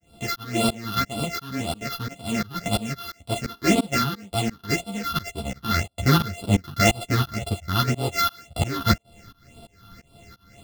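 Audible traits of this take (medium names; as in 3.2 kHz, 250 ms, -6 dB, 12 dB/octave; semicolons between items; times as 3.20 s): a buzz of ramps at a fixed pitch in blocks of 64 samples; phasing stages 6, 1.9 Hz, lowest notch 570–1800 Hz; tremolo saw up 2.9 Hz, depth 100%; a shimmering, thickened sound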